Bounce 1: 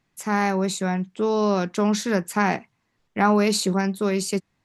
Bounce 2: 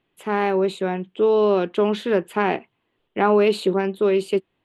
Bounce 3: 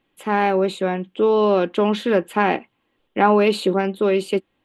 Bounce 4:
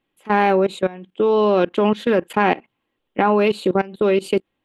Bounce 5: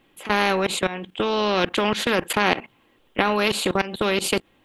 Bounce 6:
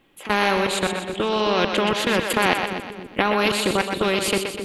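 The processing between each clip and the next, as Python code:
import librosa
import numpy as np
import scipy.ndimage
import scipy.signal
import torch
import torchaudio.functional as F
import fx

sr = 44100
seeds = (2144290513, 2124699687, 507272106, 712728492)

y1 = fx.curve_eq(x, sr, hz=(200.0, 380.0, 770.0, 2100.0, 3100.0, 5700.0, 9000.0), db=(0, 12, 5, 2, 12, -17, -7))
y1 = y1 * librosa.db_to_amplitude(-4.5)
y2 = y1 + 0.33 * np.pad(y1, (int(3.7 * sr / 1000.0), 0))[:len(y1)]
y2 = y2 * librosa.db_to_amplitude(2.5)
y3 = fx.level_steps(y2, sr, step_db=20)
y3 = y3 * librosa.db_to_amplitude(4.5)
y4 = fx.spectral_comp(y3, sr, ratio=2.0)
y4 = y4 * librosa.db_to_amplitude(1.0)
y5 = fx.echo_split(y4, sr, split_hz=430.0, low_ms=266, high_ms=124, feedback_pct=52, wet_db=-6.0)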